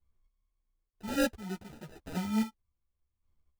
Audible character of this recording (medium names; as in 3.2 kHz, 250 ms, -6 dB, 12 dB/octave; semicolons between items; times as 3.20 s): chopped level 0.93 Hz, depth 60%, duty 25%; phasing stages 2, 3.4 Hz, lowest notch 490–3200 Hz; aliases and images of a low sample rate 1.1 kHz, jitter 0%; a shimmering, thickened sound